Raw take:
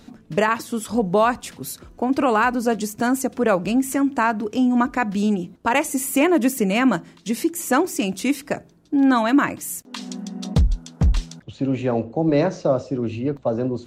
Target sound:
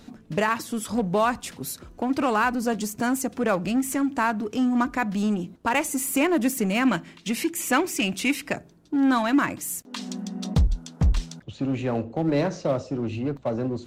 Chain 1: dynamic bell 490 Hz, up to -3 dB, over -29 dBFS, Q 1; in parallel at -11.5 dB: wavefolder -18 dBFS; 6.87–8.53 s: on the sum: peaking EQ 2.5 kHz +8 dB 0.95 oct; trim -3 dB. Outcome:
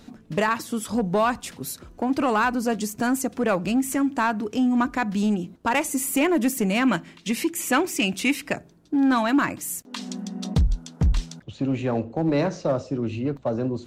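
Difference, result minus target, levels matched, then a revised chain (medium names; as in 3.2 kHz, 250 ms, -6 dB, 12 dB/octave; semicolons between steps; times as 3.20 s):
wavefolder: distortion -15 dB
dynamic bell 490 Hz, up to -3 dB, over -29 dBFS, Q 1; in parallel at -11.5 dB: wavefolder -25.5 dBFS; 6.87–8.53 s: on the sum: peaking EQ 2.5 kHz +8 dB 0.95 oct; trim -3 dB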